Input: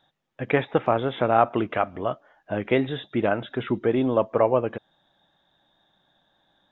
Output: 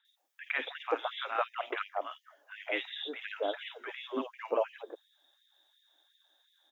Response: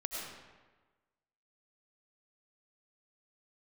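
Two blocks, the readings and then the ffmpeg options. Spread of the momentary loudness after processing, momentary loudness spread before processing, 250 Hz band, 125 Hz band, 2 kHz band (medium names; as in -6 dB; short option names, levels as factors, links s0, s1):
15 LU, 11 LU, -19.0 dB, under -40 dB, -5.0 dB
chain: -filter_complex "[0:a]crystalizer=i=6.5:c=0,acrossover=split=1000|3000[s0][s1][s2];[s2]adelay=50[s3];[s0]adelay=170[s4];[s4][s1][s3]amix=inputs=3:normalize=0,afftfilt=real='re*gte(b*sr/1024,240*pow(1800/240,0.5+0.5*sin(2*PI*2.8*pts/sr)))':imag='im*gte(b*sr/1024,240*pow(1800/240,0.5+0.5*sin(2*PI*2.8*pts/sr)))':win_size=1024:overlap=0.75,volume=0.355"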